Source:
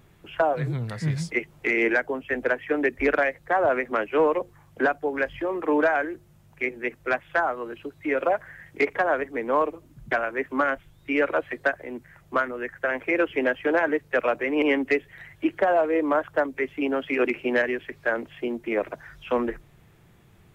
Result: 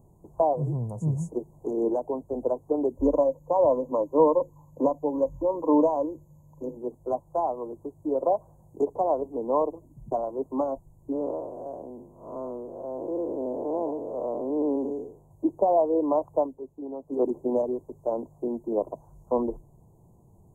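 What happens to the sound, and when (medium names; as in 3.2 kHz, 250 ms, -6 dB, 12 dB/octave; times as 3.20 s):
2.97–6.77 s: rippled EQ curve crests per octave 1.1, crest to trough 11 dB
11.12–15.31 s: spectral blur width 224 ms
16.42–17.20 s: dip -9.5 dB, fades 0.16 s
whole clip: Chebyshev band-stop 1–6.6 kHz, order 5; treble shelf 5.7 kHz -7 dB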